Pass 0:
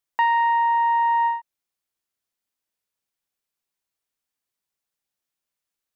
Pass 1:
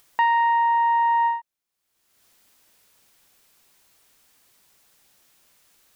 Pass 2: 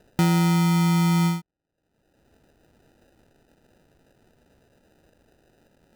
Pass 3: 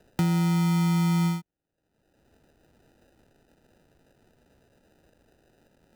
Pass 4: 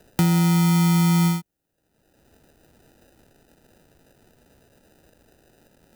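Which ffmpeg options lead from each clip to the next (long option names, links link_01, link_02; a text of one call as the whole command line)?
ffmpeg -i in.wav -af "acompressor=mode=upward:threshold=-40dB:ratio=2.5" out.wav
ffmpeg -i in.wav -af "acrusher=samples=40:mix=1:aa=0.000001" out.wav
ffmpeg -i in.wav -filter_complex "[0:a]acrossover=split=210[link_01][link_02];[link_02]acompressor=threshold=-27dB:ratio=6[link_03];[link_01][link_03]amix=inputs=2:normalize=0,volume=-2dB" out.wav
ffmpeg -i in.wav -af "crystalizer=i=1:c=0,volume=5dB" out.wav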